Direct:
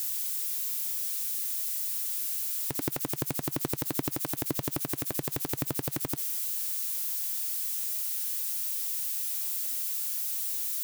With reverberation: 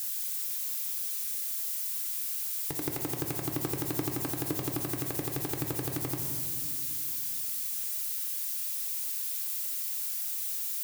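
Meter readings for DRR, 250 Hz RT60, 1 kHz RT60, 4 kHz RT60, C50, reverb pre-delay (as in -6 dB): 1.5 dB, 3.3 s, 2.0 s, 1.4 s, 4.0 dB, 3 ms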